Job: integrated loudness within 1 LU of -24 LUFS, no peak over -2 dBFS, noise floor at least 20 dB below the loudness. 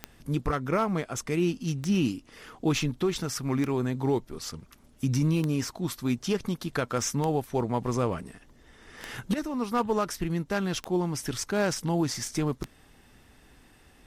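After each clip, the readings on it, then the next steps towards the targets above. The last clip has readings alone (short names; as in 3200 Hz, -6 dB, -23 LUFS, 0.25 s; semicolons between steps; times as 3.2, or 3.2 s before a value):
clicks 8; loudness -29.0 LUFS; peak -15.5 dBFS; loudness target -24.0 LUFS
-> de-click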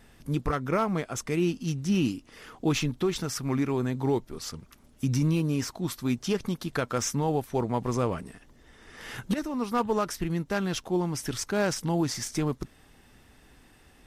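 clicks 0; loudness -29.0 LUFS; peak -16.5 dBFS; loudness target -24.0 LUFS
-> gain +5 dB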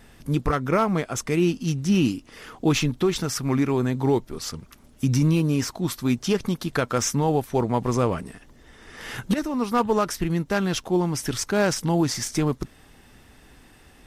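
loudness -24.0 LUFS; peak -11.5 dBFS; noise floor -52 dBFS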